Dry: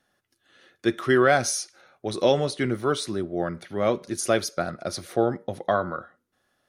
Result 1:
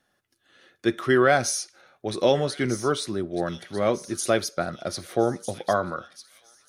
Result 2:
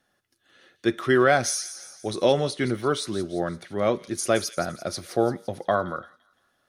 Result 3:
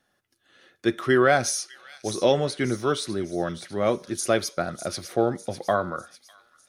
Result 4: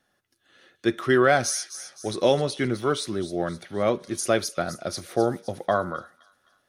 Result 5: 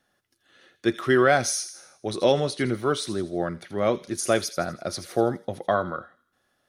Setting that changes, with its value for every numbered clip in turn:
delay with a high-pass on its return, delay time: 1,250, 171, 601, 260, 82 milliseconds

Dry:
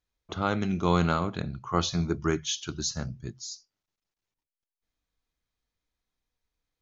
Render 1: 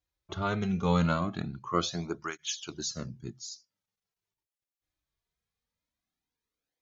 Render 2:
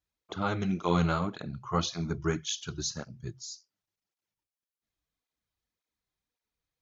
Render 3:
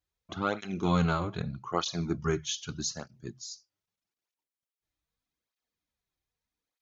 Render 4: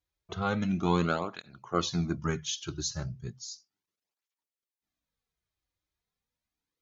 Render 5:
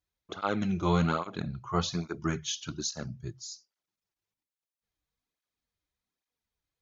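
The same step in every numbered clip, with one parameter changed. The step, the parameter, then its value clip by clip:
through-zero flanger with one copy inverted, nulls at: 0.21, 1.8, 0.81, 0.35, 1.2 Hertz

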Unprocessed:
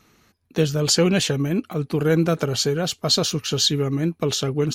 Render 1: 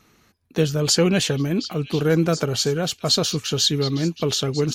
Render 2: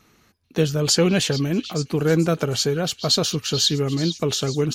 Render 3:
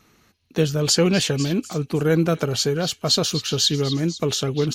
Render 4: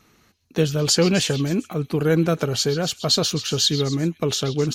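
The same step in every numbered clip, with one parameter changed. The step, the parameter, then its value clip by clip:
echo through a band-pass that steps, delay time: 722, 436, 249, 131 milliseconds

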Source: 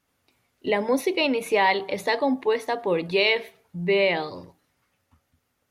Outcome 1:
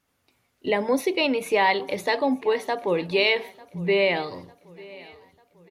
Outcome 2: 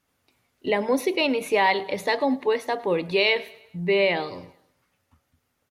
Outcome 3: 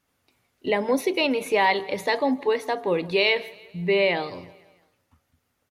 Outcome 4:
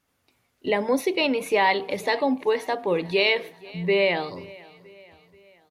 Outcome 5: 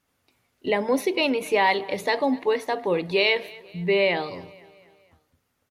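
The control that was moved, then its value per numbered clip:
repeating echo, delay time: 897, 106, 165, 482, 244 milliseconds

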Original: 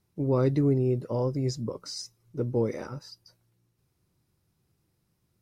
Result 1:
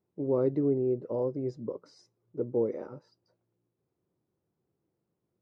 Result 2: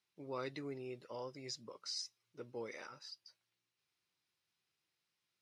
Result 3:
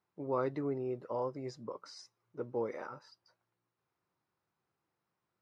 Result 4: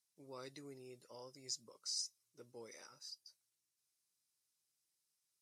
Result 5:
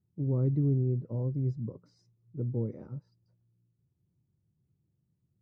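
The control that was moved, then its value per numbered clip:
resonant band-pass, frequency: 440, 3,000, 1,100, 7,700, 130 Hertz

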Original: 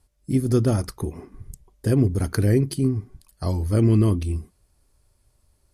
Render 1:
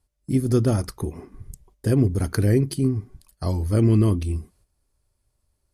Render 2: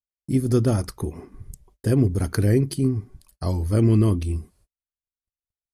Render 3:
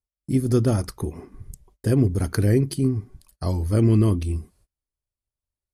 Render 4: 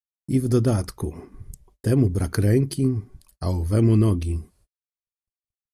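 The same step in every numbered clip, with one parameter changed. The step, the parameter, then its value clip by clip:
noise gate, range: −8, −43, −28, −60 decibels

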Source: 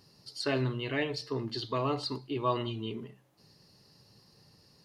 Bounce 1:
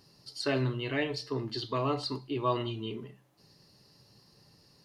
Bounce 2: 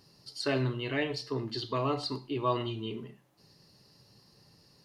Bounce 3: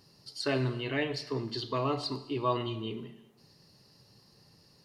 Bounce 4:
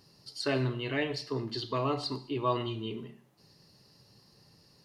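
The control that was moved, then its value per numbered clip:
reverb whose tail is shaped and stops, gate: 80, 150, 430, 260 milliseconds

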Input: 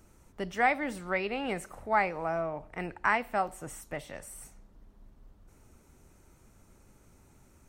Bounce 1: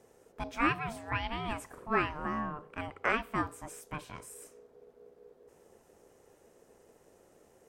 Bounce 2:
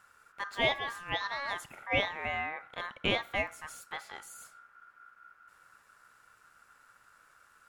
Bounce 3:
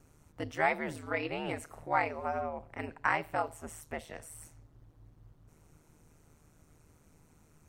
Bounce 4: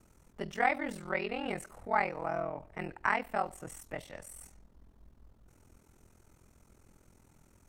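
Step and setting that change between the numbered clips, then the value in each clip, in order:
ring modulation, frequency: 450, 1,400, 77, 21 Hertz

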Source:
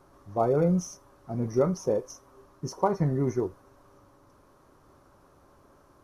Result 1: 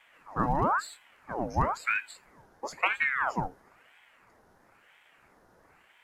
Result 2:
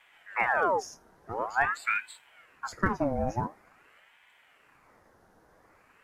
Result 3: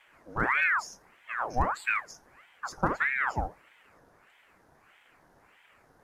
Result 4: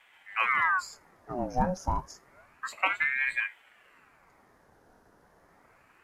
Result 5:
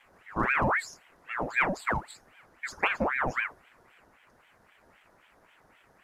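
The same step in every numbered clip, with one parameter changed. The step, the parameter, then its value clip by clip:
ring modulator whose carrier an LFO sweeps, at: 1, 0.47, 1.6, 0.3, 3.8 Hertz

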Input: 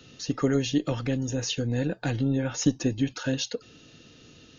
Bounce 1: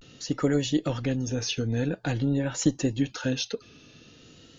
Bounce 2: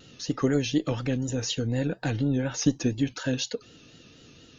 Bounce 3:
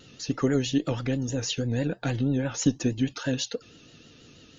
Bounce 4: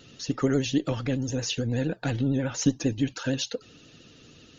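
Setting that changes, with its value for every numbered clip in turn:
pitch vibrato, speed: 0.48, 4.1, 6.2, 13 Hertz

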